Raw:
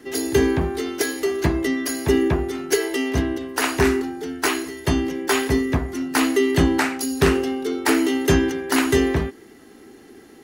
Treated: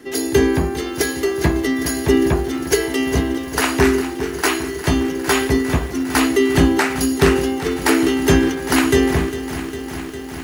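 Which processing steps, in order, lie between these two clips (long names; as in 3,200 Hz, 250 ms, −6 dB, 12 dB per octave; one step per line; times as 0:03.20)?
feedback echo at a low word length 404 ms, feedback 80%, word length 7 bits, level −12.5 dB
level +3 dB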